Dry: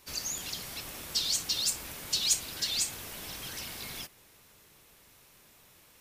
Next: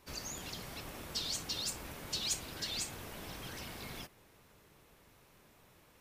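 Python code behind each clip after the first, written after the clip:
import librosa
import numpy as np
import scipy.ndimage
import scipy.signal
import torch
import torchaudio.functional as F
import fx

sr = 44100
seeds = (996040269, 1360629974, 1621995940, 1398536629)

y = fx.high_shelf(x, sr, hz=2300.0, db=-11.5)
y = y * librosa.db_to_amplitude(1.0)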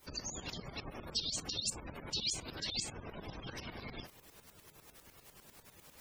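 y = fx.quant_dither(x, sr, seeds[0], bits=10, dither='triangular')
y = fx.spec_gate(y, sr, threshold_db=-15, keep='strong')
y = fx.tremolo_shape(y, sr, shape='saw_up', hz=10.0, depth_pct=75)
y = y * librosa.db_to_amplitude(5.0)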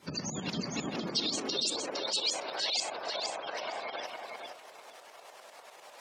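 y = fx.air_absorb(x, sr, metres=60.0)
y = fx.filter_sweep_highpass(y, sr, from_hz=160.0, to_hz=660.0, start_s=0.3, end_s=2.27, q=2.7)
y = fx.echo_feedback(y, sr, ms=461, feedback_pct=20, wet_db=-4)
y = y * librosa.db_to_amplitude(7.0)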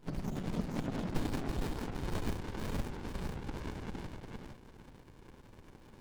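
y = fx.running_max(x, sr, window=65)
y = y * librosa.db_to_amplitude(1.5)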